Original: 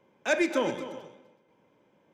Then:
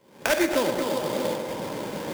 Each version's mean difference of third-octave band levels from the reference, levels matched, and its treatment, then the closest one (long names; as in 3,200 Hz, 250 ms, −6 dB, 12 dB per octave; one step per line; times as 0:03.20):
13.0 dB: camcorder AGC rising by 78 dB per second
sample-rate reduction 4,100 Hz, jitter 20%
feedback echo with a band-pass in the loop 117 ms, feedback 79%, band-pass 750 Hz, level −8 dB
level +2.5 dB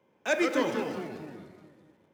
7.0 dB: in parallel at −11 dB: bit reduction 7 bits
on the sum: high-pass filter 60 Hz
delay with pitch and tempo change per echo 86 ms, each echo −3 semitones, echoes 3, each echo −6 dB
level −3.5 dB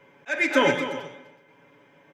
5.0 dB: parametric band 1,900 Hz +10 dB 1.2 octaves
comb filter 7.1 ms, depth 77%
volume swells 412 ms
level +5.5 dB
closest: third